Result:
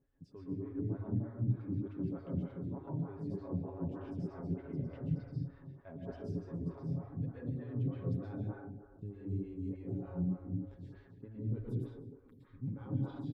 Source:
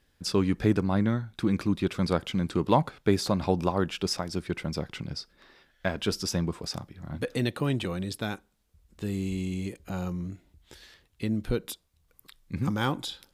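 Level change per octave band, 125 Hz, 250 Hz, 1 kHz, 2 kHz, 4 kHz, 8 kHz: -5.5 dB, -10.5 dB, -21.5 dB, -24.5 dB, under -35 dB, under -35 dB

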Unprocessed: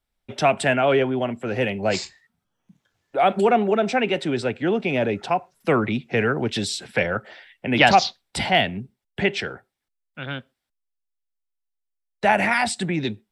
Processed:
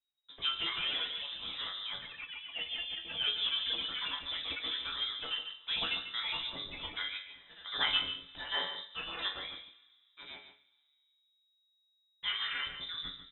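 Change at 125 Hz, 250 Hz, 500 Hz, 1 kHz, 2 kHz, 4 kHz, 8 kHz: -29.5 dB, -30.5 dB, -31.0 dB, -22.5 dB, -14.5 dB, -1.5 dB, under -40 dB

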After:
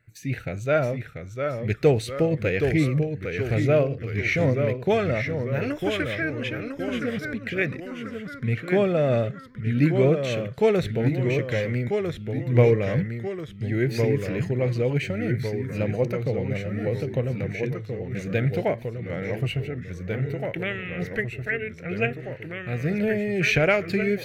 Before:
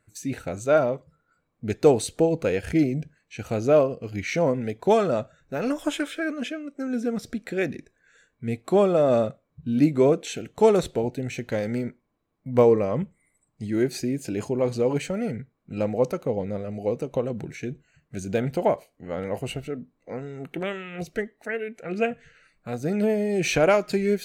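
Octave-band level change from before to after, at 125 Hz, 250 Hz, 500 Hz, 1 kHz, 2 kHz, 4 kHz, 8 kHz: +7.5 dB, -0.5 dB, -1.5 dB, -4.0 dB, +6.0 dB, +1.5 dB, no reading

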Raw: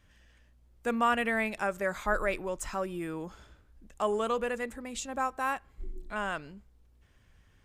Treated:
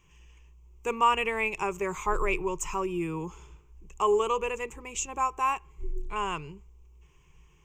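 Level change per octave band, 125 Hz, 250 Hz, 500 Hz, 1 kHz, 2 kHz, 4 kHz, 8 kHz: +4.5 dB, -1.0 dB, +2.5 dB, +4.5 dB, -0.5 dB, +4.0 dB, +6.0 dB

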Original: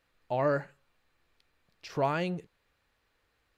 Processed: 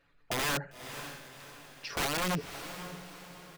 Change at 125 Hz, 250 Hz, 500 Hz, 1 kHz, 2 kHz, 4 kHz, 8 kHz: -2.5 dB, -2.0 dB, -7.5 dB, -2.0 dB, +5.5 dB, +12.5 dB, no reading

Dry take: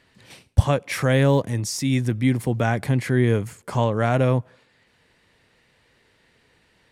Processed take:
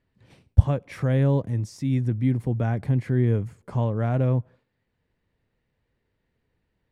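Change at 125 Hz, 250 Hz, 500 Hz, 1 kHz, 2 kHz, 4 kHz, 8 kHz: -0.5 dB, -3.5 dB, -6.5 dB, -9.0 dB, -12.0 dB, under -10 dB, under -15 dB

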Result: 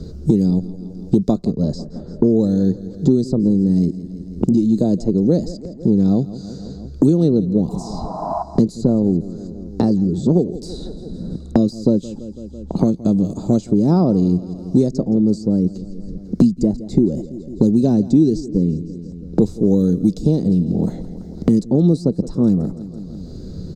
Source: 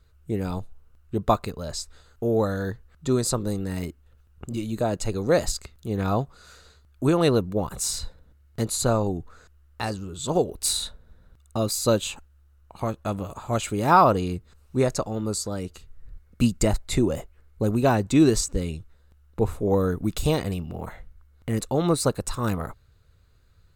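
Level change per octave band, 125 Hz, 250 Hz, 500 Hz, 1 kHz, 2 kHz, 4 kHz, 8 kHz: +8.0 dB, +12.0 dB, +3.5 dB, -6.0 dB, under -15 dB, no reading, under -10 dB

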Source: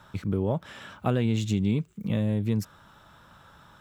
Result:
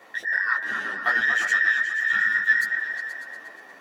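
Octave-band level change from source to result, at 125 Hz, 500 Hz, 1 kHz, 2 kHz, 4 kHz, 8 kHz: under -30 dB, -11.5 dB, +7.0 dB, +27.0 dB, +5.0 dB, +4.5 dB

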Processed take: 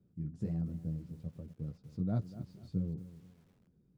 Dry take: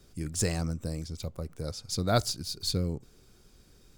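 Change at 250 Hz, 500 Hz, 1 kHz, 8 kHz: -3.0 dB, -16.0 dB, -20.0 dB, under -35 dB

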